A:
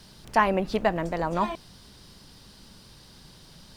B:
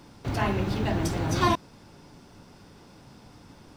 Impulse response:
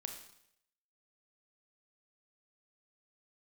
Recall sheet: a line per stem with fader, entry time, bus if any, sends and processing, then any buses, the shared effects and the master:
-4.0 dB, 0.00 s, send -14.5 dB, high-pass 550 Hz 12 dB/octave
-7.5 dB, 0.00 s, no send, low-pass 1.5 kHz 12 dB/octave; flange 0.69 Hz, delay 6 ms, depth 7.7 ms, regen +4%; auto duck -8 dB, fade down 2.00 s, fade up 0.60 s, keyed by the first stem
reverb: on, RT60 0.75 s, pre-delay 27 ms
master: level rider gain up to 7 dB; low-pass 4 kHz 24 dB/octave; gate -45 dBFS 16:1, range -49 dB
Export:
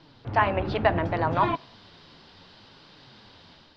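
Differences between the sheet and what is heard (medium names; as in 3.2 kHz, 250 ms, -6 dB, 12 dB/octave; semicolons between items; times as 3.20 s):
stem B -7.5 dB -> -1.5 dB; master: missing gate -45 dBFS 16:1, range -49 dB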